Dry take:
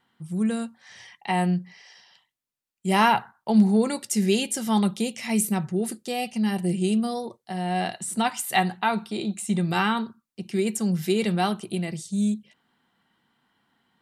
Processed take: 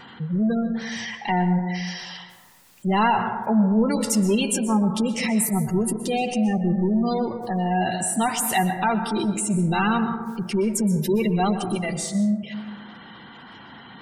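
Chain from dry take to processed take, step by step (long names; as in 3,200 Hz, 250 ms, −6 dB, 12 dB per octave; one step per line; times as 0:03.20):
0:11.75–0:12.15: low shelf with overshoot 450 Hz −9 dB, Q 1.5
power curve on the samples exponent 0.5
gate on every frequency bin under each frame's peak −20 dB strong
dense smooth reverb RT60 1.4 s, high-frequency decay 0.25×, pre-delay 110 ms, DRR 7.5 dB
level −5 dB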